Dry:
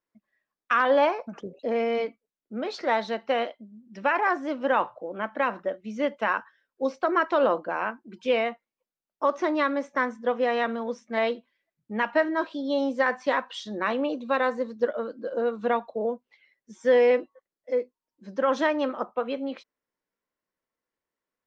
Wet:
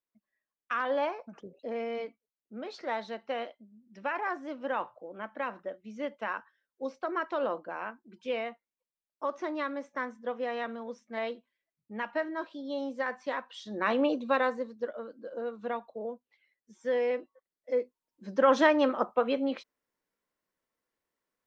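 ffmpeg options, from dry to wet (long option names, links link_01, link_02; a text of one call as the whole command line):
ffmpeg -i in.wav -af "volume=12dB,afade=type=in:start_time=13.57:duration=0.48:silence=0.316228,afade=type=out:start_time=14.05:duration=0.72:silence=0.298538,afade=type=in:start_time=17.21:duration=1.25:silence=0.281838" out.wav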